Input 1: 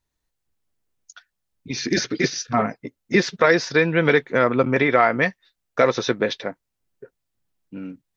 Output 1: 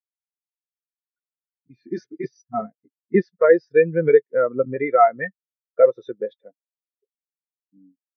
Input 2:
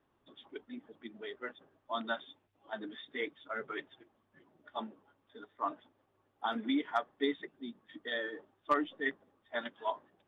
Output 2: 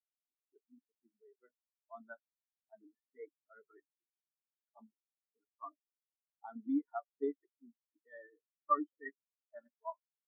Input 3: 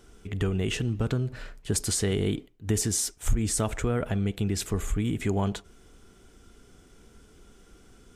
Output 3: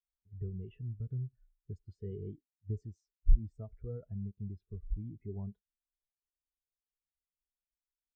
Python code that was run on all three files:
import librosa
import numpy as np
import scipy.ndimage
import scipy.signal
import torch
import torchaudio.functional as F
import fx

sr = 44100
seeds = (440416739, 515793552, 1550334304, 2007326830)

y = fx.dynamic_eq(x, sr, hz=250.0, q=2.9, threshold_db=-34.0, ratio=4.0, max_db=-3)
y = fx.env_lowpass(y, sr, base_hz=1500.0, full_db=-17.0)
y = fx.spectral_expand(y, sr, expansion=2.5)